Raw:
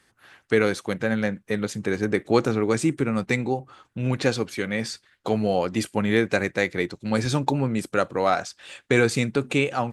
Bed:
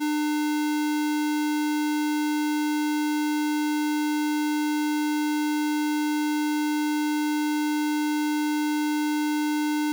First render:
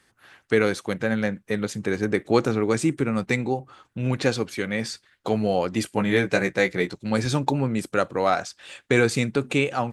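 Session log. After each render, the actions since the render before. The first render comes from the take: 5.94–6.95 s: doubling 16 ms -5 dB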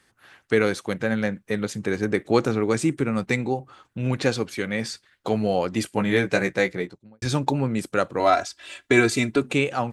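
6.54–7.22 s: studio fade out; 8.19–9.42 s: comb 3 ms, depth 81%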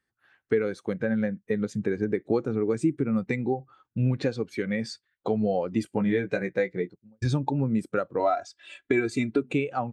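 compression 5:1, threshold -25 dBFS, peak gain reduction 12 dB; spectral contrast expander 1.5:1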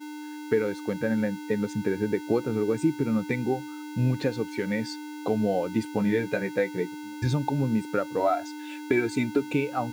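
add bed -13.5 dB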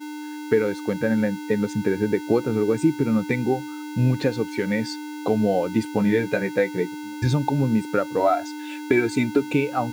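trim +4.5 dB

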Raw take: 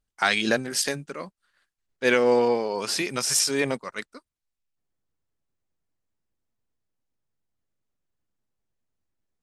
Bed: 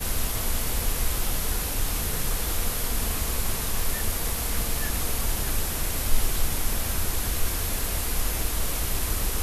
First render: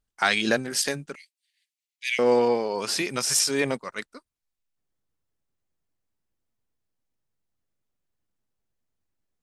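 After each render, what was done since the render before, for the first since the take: 1.15–2.19 s: steep high-pass 2 kHz 72 dB/octave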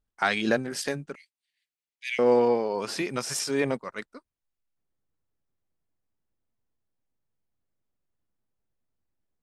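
treble shelf 2.5 kHz -10 dB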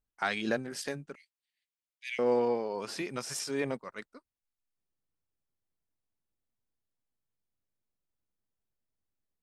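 trim -6.5 dB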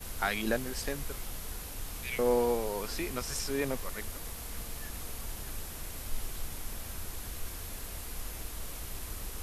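add bed -13.5 dB

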